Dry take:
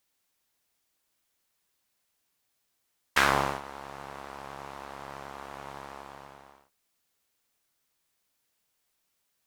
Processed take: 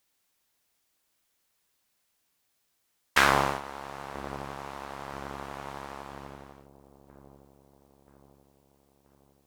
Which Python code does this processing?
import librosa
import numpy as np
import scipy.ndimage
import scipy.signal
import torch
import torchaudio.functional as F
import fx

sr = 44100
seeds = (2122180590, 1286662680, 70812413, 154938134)

y = fx.echo_wet_lowpass(x, sr, ms=981, feedback_pct=56, hz=500.0, wet_db=-12)
y = y * librosa.db_to_amplitude(2.0)